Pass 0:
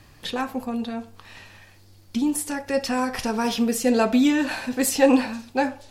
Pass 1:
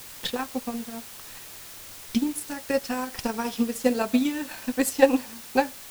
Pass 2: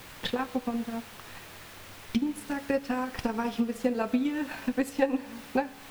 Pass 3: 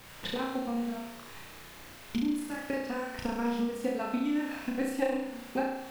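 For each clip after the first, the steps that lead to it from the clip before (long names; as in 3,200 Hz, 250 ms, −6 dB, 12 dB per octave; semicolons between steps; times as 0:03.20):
high-shelf EQ 9,000 Hz +4 dB; transient designer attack +11 dB, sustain −8 dB; background noise white −35 dBFS; level −8 dB
bass and treble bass +2 dB, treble −13 dB; downward compressor 2.5 to 1, threshold −29 dBFS, peak gain reduction 13 dB; tuned comb filter 70 Hz, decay 1.6 s, harmonics all, mix 50%; level +8 dB
flutter between parallel walls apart 5.8 metres, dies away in 0.83 s; level −5.5 dB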